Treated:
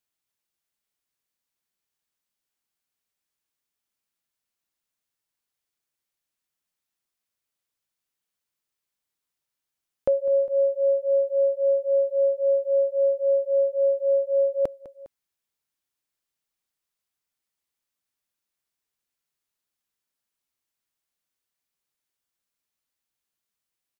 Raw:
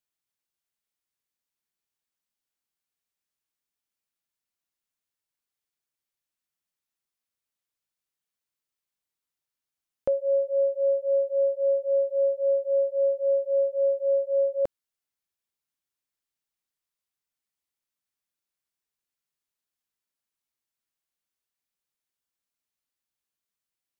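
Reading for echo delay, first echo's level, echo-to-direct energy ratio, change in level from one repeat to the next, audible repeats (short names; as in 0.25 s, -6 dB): 0.203 s, -17.0 dB, -16.0 dB, -4.5 dB, 2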